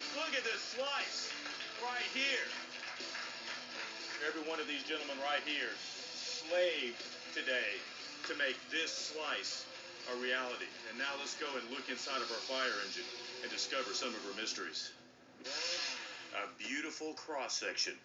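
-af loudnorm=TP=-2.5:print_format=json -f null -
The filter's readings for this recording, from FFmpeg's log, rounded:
"input_i" : "-38.7",
"input_tp" : "-22.3",
"input_lra" : "2.0",
"input_thresh" : "-48.8",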